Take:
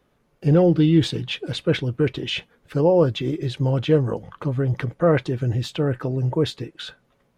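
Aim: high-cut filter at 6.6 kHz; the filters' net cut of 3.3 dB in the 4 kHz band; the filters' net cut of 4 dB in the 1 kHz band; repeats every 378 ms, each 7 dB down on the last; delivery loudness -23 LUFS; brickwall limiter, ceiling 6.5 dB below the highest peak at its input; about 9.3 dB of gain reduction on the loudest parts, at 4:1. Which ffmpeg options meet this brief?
-af "lowpass=6600,equalizer=f=1000:t=o:g=-5.5,equalizer=f=4000:t=o:g=-3.5,acompressor=threshold=0.0631:ratio=4,alimiter=limit=0.0841:level=0:latency=1,aecho=1:1:378|756|1134|1512|1890:0.447|0.201|0.0905|0.0407|0.0183,volume=2.37"

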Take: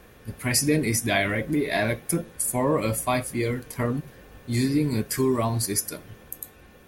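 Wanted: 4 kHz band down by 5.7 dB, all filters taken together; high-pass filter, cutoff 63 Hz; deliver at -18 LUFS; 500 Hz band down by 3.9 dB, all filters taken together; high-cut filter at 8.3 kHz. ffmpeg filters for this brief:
-af "highpass=63,lowpass=8300,equalizer=f=500:t=o:g=-5,equalizer=f=4000:t=o:g=-7,volume=2.99"

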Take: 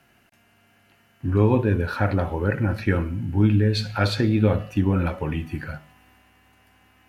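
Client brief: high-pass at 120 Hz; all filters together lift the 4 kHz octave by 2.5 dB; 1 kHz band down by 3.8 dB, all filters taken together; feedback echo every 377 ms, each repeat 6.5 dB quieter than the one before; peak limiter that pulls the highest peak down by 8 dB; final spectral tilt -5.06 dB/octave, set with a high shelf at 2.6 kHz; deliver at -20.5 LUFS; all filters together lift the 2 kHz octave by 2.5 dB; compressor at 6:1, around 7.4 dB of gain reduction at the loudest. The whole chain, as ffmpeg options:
-af "highpass=120,equalizer=f=1000:t=o:g=-8,equalizer=f=2000:t=o:g=8.5,highshelf=f=2600:g=-8,equalizer=f=4000:t=o:g=7.5,acompressor=threshold=0.0708:ratio=6,alimiter=limit=0.106:level=0:latency=1,aecho=1:1:377|754|1131|1508|1885|2262:0.473|0.222|0.105|0.0491|0.0231|0.0109,volume=2.99"

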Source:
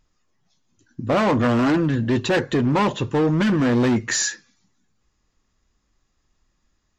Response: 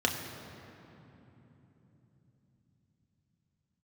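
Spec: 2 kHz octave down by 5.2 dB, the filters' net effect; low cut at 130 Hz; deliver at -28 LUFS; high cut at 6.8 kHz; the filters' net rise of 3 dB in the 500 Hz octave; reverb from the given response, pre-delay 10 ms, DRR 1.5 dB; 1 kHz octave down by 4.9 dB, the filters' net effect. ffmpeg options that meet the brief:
-filter_complex "[0:a]highpass=130,lowpass=6800,equalizer=f=500:t=o:g=5.5,equalizer=f=1000:t=o:g=-7,equalizer=f=2000:t=o:g=-4.5,asplit=2[s0][s1];[1:a]atrim=start_sample=2205,adelay=10[s2];[s1][s2]afir=irnorm=-1:irlink=0,volume=0.266[s3];[s0][s3]amix=inputs=2:normalize=0,volume=0.282"

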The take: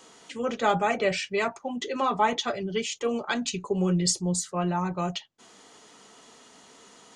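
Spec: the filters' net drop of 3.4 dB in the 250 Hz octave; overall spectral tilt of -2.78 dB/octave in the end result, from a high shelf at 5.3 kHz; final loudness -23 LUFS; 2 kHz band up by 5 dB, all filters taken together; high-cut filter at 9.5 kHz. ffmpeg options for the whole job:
-af "lowpass=9500,equalizer=f=250:t=o:g=-5.5,equalizer=f=2000:t=o:g=5.5,highshelf=f=5300:g=5.5,volume=1.5"

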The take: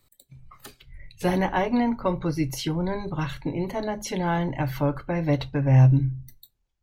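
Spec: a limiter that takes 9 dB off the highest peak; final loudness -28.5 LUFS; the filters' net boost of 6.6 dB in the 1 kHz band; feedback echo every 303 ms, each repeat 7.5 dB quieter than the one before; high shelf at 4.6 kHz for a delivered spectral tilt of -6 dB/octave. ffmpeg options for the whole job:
-af "equalizer=f=1000:t=o:g=8,highshelf=f=4600:g=6.5,alimiter=limit=0.188:level=0:latency=1,aecho=1:1:303|606|909|1212|1515:0.422|0.177|0.0744|0.0312|0.0131,volume=0.668"

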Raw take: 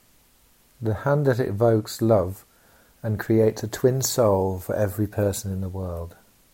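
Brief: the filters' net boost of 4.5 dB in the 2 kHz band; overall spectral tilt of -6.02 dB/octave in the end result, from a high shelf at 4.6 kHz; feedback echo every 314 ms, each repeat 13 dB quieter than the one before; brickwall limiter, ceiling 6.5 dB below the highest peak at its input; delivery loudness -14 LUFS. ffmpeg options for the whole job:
-af "equalizer=f=2000:t=o:g=7,highshelf=f=4600:g=-4,alimiter=limit=0.224:level=0:latency=1,aecho=1:1:314|628|942:0.224|0.0493|0.0108,volume=3.76"

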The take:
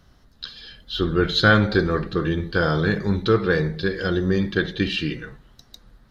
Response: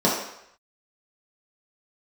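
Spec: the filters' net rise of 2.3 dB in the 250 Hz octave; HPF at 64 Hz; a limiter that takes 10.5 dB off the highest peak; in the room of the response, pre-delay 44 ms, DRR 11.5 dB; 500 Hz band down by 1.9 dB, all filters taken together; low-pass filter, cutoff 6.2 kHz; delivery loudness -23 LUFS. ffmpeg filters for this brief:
-filter_complex "[0:a]highpass=64,lowpass=6200,equalizer=f=250:t=o:g=5,equalizer=f=500:t=o:g=-4.5,alimiter=limit=0.211:level=0:latency=1,asplit=2[s0][s1];[1:a]atrim=start_sample=2205,adelay=44[s2];[s1][s2]afir=irnorm=-1:irlink=0,volume=0.0335[s3];[s0][s3]amix=inputs=2:normalize=0,volume=1.19"

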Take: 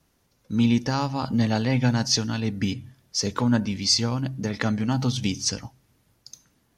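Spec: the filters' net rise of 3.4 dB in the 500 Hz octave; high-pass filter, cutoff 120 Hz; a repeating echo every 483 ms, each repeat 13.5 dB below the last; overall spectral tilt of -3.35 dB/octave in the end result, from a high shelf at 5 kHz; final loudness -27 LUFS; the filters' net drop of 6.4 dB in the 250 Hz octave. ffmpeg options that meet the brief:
-af "highpass=120,equalizer=f=250:t=o:g=-8,equalizer=f=500:t=o:g=6,highshelf=f=5000:g=3.5,aecho=1:1:483|966:0.211|0.0444,volume=0.841"

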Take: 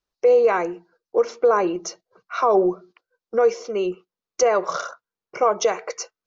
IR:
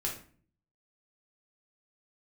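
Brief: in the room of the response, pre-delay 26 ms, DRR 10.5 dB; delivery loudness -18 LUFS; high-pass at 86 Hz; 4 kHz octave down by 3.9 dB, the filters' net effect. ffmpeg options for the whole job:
-filter_complex "[0:a]highpass=86,equalizer=f=4000:t=o:g=-6,asplit=2[s0][s1];[1:a]atrim=start_sample=2205,adelay=26[s2];[s1][s2]afir=irnorm=-1:irlink=0,volume=0.211[s3];[s0][s3]amix=inputs=2:normalize=0,volume=1.41"

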